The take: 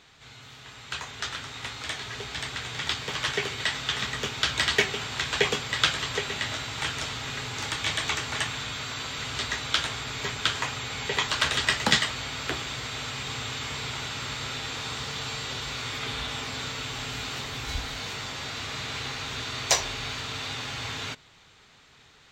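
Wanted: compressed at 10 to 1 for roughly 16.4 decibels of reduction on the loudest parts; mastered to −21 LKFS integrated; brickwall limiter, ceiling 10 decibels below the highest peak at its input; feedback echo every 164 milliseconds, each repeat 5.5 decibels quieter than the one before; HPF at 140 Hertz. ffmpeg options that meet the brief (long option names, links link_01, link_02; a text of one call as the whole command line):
ffmpeg -i in.wav -af "highpass=140,acompressor=threshold=-35dB:ratio=10,alimiter=level_in=4dB:limit=-24dB:level=0:latency=1,volume=-4dB,aecho=1:1:164|328|492|656|820|984|1148:0.531|0.281|0.149|0.079|0.0419|0.0222|0.0118,volume=15.5dB" out.wav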